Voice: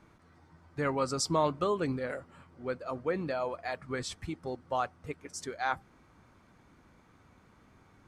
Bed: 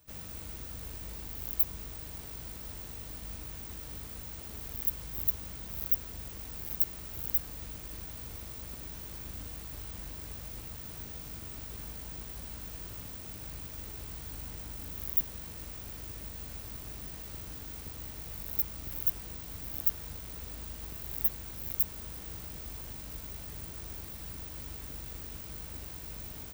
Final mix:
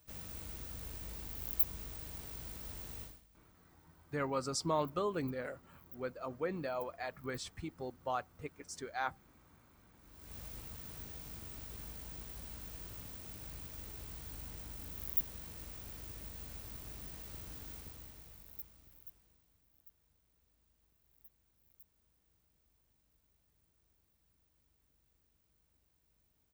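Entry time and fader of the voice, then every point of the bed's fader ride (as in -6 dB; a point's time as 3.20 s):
3.35 s, -5.5 dB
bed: 3.03 s -3.5 dB
3.28 s -26.5 dB
9.93 s -26.5 dB
10.37 s -5 dB
17.72 s -5 dB
19.67 s -32.5 dB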